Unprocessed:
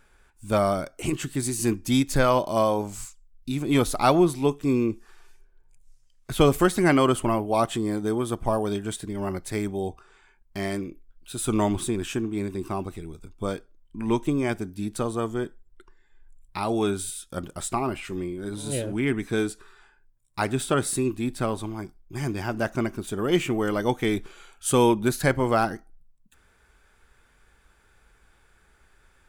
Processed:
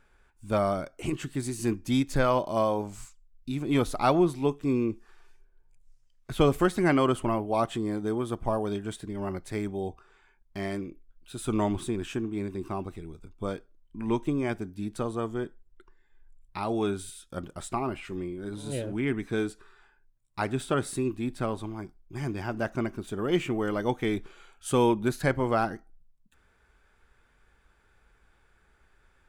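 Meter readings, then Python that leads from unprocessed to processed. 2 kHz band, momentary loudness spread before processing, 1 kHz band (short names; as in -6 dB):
-4.5 dB, 14 LU, -4.0 dB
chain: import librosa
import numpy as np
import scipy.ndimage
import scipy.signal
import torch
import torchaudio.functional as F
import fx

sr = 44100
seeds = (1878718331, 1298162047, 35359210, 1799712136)

y = fx.high_shelf(x, sr, hz=5500.0, db=-9.0)
y = y * 10.0 ** (-3.5 / 20.0)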